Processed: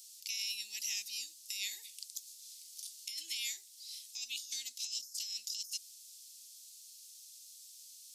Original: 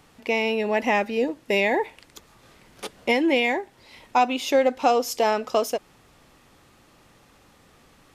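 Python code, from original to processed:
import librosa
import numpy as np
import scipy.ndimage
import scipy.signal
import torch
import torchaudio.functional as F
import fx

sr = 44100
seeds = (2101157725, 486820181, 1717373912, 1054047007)

y = scipy.signal.sosfilt(scipy.signal.cheby2(4, 60, 1500.0, 'highpass', fs=sr, output='sos'), x)
y = fx.over_compress(y, sr, threshold_db=-49.0, ratio=-1.0)
y = y * 10.0 ** (7.5 / 20.0)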